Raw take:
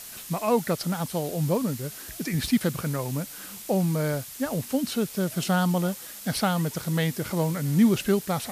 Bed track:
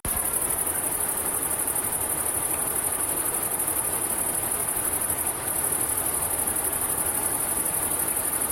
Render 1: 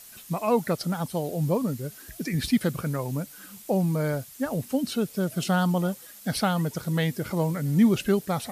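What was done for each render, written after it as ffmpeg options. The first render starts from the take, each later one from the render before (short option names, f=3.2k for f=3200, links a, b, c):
-af "afftdn=nr=8:nf=-41"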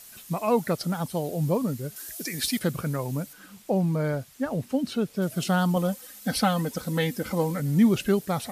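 -filter_complex "[0:a]asettb=1/sr,asplit=3[a][b][c];[a]atrim=end=1.964[d];[b]atrim=start=1.96:end=2.59,asetpts=PTS-STARTPTS,afade=t=in:d=0.004:c=qsin,afade=t=out:st=0.626:d=0.004:c=qsin,bass=f=250:g=-13,treble=f=4k:g=8[e];[c]atrim=start=2.586[f];[d][e]acrossfade=d=0.004:c1=hsin:c2=qsin[g];[g][f]acrossfade=d=0.004:c1=qsin:c2=hsin,asettb=1/sr,asplit=3[h][i][j];[h]atrim=end=3.334[k];[i]atrim=start=3.33:end=5.22,asetpts=PTS-STARTPTS,afade=t=in:d=0.004:c=qsin,afade=t=out:st=1.886:d=0.004:c=qsin,highshelf=f=6.1k:g=-10.5[l];[j]atrim=start=5.216[m];[k][l]acrossfade=d=0.004:c1=hsin:c2=qsin[n];[n][m]acrossfade=d=0.004:c1=qsin:c2=hsin,asettb=1/sr,asplit=3[o][p][q];[o]atrim=end=5.764[r];[p]atrim=start=5.76:end=7.6,asetpts=PTS-STARTPTS,afade=t=in:d=0.004:c=qsin,afade=t=out:st=1.836:d=0.004:c=qsin,aecho=1:1:3.9:0.65,atrim=end_sample=81144[s];[q]atrim=start=7.596[t];[r][s]acrossfade=d=0.004:c1=hsin:c2=qsin[u];[u][t]acrossfade=d=0.004:c1=qsin:c2=hsin"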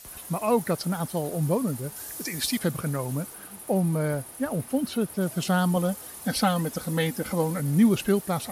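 -filter_complex "[1:a]volume=-17.5dB[a];[0:a][a]amix=inputs=2:normalize=0"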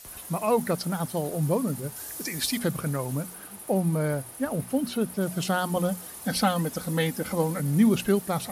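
-af "bandreject=f=60:t=h:w=6,bandreject=f=120:t=h:w=6,bandreject=f=180:t=h:w=6,bandreject=f=240:t=h:w=6"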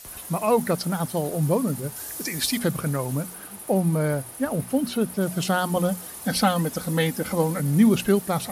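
-af "volume=3dB"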